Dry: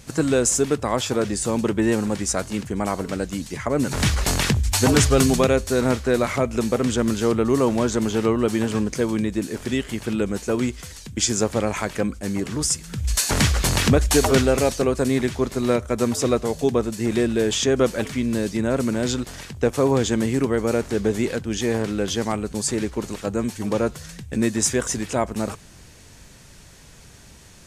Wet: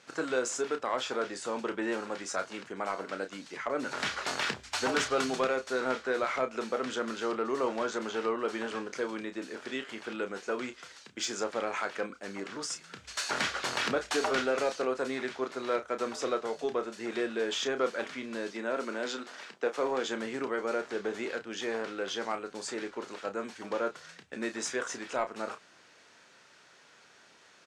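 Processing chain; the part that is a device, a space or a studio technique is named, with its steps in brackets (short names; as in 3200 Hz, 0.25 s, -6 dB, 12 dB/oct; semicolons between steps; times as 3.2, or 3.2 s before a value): 18.51–20.05 HPF 180 Hz 24 dB/oct; intercom (BPF 440–4600 Hz; bell 1400 Hz +6 dB 0.43 oct; soft clip -12.5 dBFS, distortion -19 dB; doubler 31 ms -9 dB); gain -7 dB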